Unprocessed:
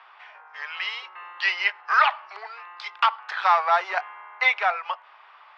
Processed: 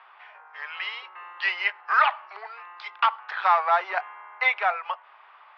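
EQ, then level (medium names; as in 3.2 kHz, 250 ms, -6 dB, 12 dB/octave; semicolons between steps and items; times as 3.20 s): distance through air 190 m; 0.0 dB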